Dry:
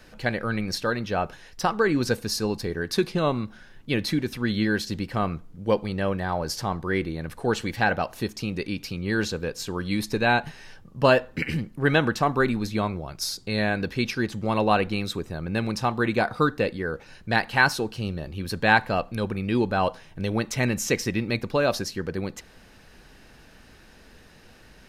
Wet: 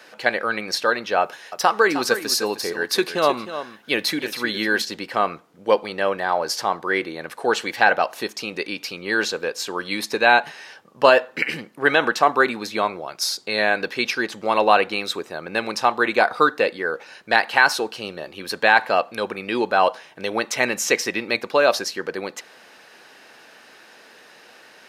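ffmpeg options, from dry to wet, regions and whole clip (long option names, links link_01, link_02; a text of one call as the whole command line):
ffmpeg -i in.wav -filter_complex "[0:a]asettb=1/sr,asplit=3[link_01][link_02][link_03];[link_01]atrim=end=1.214[link_04];[link_02]atrim=start=1.21:end=4.82,asetpts=PTS-STARTPTS,afade=type=in:duration=0.004:curve=qsin,afade=type=out:start_time=3.606:duration=0.004:curve=qsin,highshelf=frequency=11000:gain=10,aecho=1:1:310:0.266,atrim=end_sample=159201[link_05];[link_03]atrim=start=4.816[link_06];[link_04][link_05]acrossfade=duration=0.004:curve1=hsin:curve2=qsin[link_07];[link_07][link_06]acrossfade=duration=0.004:curve1=qsin:curve2=hsin,highpass=490,highshelf=frequency=6200:gain=-5,alimiter=level_in=9dB:limit=-1dB:release=50:level=0:latency=1,volume=-1dB" out.wav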